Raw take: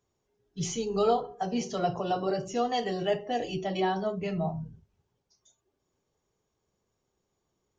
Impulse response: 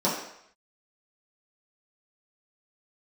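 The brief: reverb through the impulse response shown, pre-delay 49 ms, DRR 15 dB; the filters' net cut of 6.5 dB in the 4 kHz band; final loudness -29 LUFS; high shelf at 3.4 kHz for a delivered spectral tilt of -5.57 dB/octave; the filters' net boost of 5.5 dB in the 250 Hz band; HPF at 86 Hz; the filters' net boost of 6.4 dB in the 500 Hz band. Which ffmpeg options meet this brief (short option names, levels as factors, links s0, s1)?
-filter_complex "[0:a]highpass=86,equalizer=f=250:t=o:g=6,equalizer=f=500:t=o:g=6.5,highshelf=f=3400:g=-6.5,equalizer=f=4000:t=o:g=-5,asplit=2[s0][s1];[1:a]atrim=start_sample=2205,adelay=49[s2];[s1][s2]afir=irnorm=-1:irlink=0,volume=0.0376[s3];[s0][s3]amix=inputs=2:normalize=0,volume=0.631"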